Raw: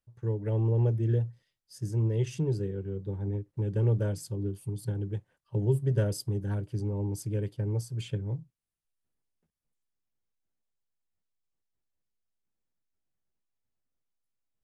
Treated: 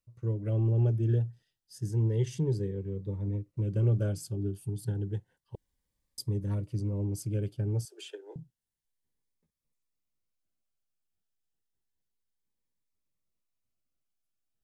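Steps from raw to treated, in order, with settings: 5.55–6.18 room tone; 7.85–8.36 steep high-pass 340 Hz 72 dB/oct; cascading phaser rising 0.3 Hz

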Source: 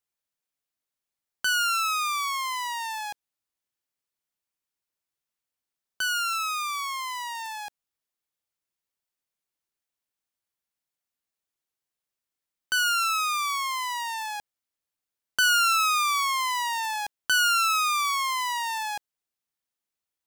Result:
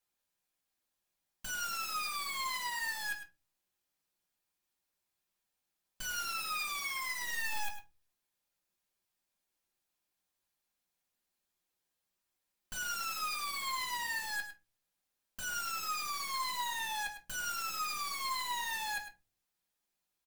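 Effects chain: compressor 8:1, threshold -24 dBFS, peak gain reduction 6 dB; tube stage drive 37 dB, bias 0.2; wrapped overs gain 38.5 dB; echo 0.104 s -11 dB; reverb RT60 0.25 s, pre-delay 4 ms, DRR -0.5 dB

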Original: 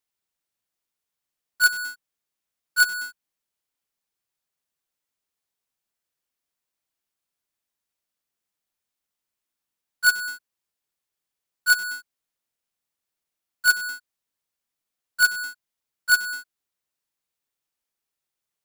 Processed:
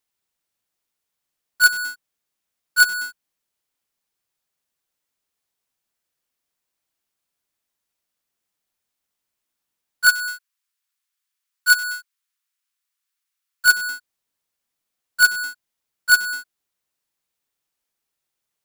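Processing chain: 10.07–13.65 HPF 1100 Hz 24 dB/oct; gain +4 dB

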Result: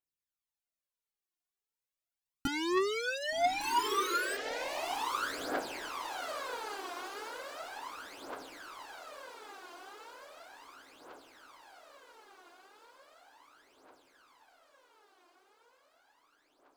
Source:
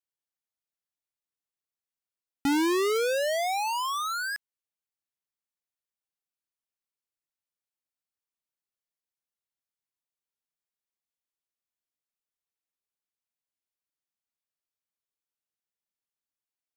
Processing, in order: 2.47–3.61 three-band isolator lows -13 dB, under 480 Hz, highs -17 dB, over 6700 Hz; diffused feedback echo 1.184 s, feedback 65%, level -4 dB; phaser 0.36 Hz, delay 2.9 ms, feedback 73%; gain -6.5 dB

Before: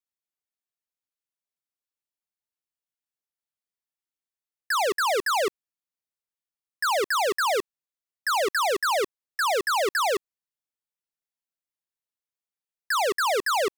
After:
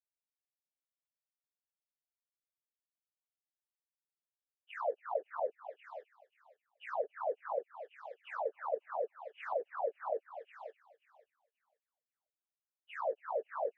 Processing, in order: inharmonic rescaling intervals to 127%; ladder band-pass 670 Hz, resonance 55%; on a send: thinning echo 0.534 s, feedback 19%, high-pass 600 Hz, level -11 dB; on the sum: treble ducked by the level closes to 680 Hz, closed at -38.5 dBFS; gain +5 dB

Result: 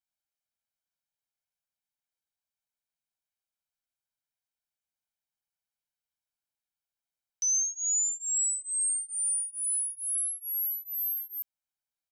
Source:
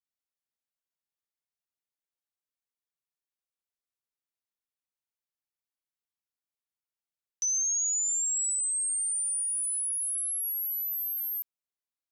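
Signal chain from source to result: comb 1.3 ms, depth 95%; gain -3.5 dB

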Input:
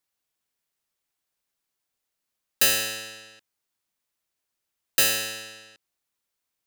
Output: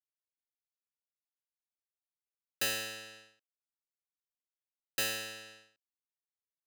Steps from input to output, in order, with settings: expander -42 dBFS; high shelf 5000 Hz -7 dB; gain -8.5 dB

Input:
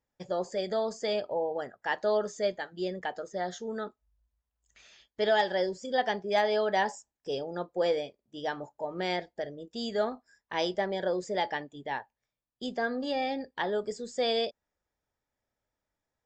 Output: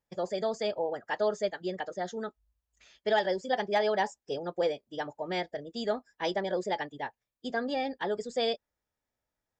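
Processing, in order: time stretch by phase-locked vocoder 0.59×

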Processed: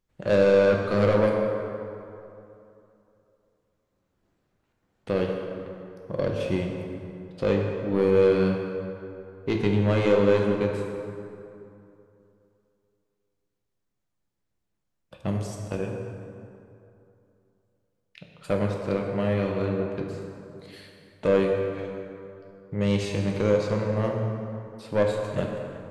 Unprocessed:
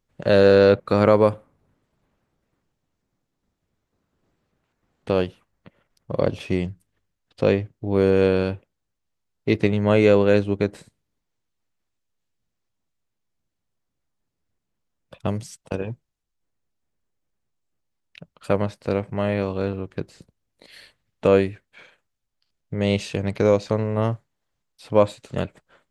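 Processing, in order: soft clip -12.5 dBFS, distortion -12 dB; plate-style reverb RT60 2.8 s, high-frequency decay 0.55×, DRR 0.5 dB; gain -4 dB

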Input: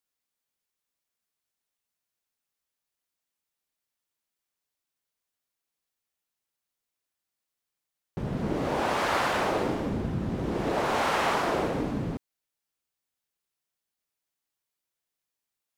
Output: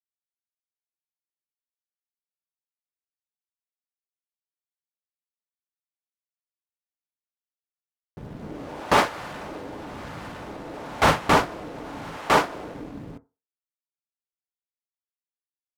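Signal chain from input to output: G.711 law mismatch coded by A; on a send: echo 1.005 s -3 dB; on the sum: FDN reverb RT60 0.3 s, low-frequency decay 0.8×, high-frequency decay 0.3×, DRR 11 dB; in parallel at +1.5 dB: limiter -23 dBFS, peak gain reduction 10.5 dB; on the sum: added harmonics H 8 -30 dB, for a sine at -9 dBFS; vocal rider 2 s; gate with hold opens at -11 dBFS; gain +7 dB

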